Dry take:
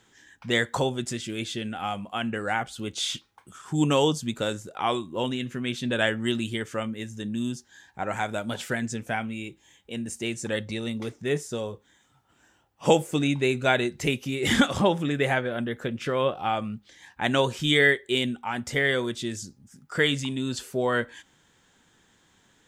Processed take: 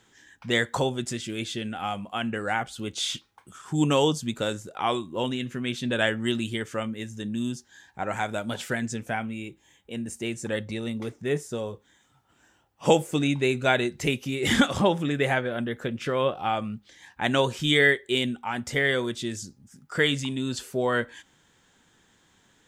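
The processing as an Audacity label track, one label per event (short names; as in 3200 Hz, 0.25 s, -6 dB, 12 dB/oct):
9.100000	11.670000	bell 4700 Hz -4 dB 1.9 oct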